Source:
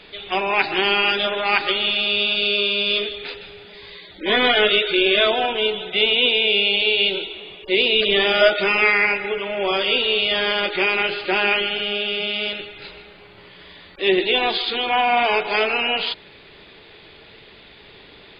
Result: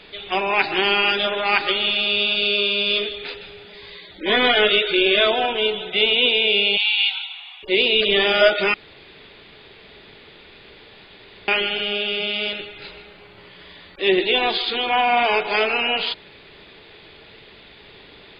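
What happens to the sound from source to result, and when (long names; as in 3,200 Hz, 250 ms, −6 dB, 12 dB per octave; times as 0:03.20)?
0:06.77–0:07.63: linear-phase brick-wall high-pass 700 Hz
0:08.74–0:11.48: fill with room tone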